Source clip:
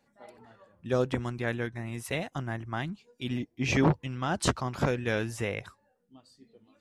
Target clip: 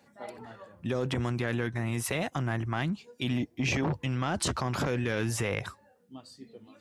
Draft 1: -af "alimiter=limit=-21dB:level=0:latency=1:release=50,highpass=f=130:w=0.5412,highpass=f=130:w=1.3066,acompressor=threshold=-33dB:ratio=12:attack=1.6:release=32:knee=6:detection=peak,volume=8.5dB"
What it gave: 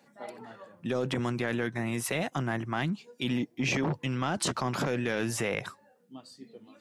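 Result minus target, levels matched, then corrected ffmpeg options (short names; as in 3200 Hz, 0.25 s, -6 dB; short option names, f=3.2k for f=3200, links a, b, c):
125 Hz band -3.0 dB
-af "alimiter=limit=-21dB:level=0:latency=1:release=50,highpass=f=62:w=0.5412,highpass=f=62:w=1.3066,acompressor=threshold=-33dB:ratio=12:attack=1.6:release=32:knee=6:detection=peak,volume=8.5dB"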